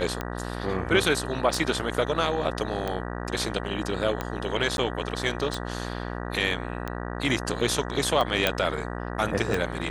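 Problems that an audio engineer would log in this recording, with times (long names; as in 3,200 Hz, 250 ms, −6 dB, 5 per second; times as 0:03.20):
mains buzz 60 Hz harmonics 32 −33 dBFS
scratch tick 45 rpm −15 dBFS
0:04.77–0:04.78: drop-out
0:08.47: click −7 dBFS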